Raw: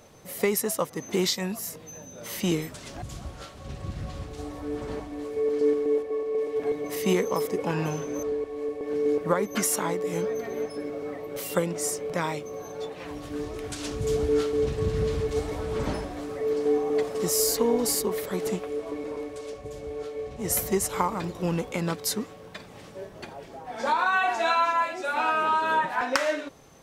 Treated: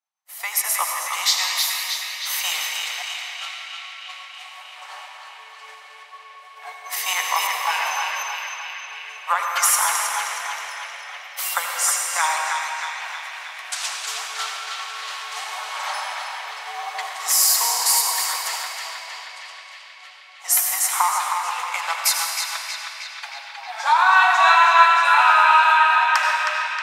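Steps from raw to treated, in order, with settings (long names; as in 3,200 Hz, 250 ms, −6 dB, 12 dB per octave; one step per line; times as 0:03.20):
Butterworth high-pass 760 Hz 48 dB per octave
downward expander −40 dBFS
automatic gain control gain up to 13 dB
feedback echo with a band-pass in the loop 315 ms, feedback 77%, band-pass 2,600 Hz, level −3 dB
convolution reverb RT60 2.7 s, pre-delay 72 ms, DRR 1.5 dB
level −3 dB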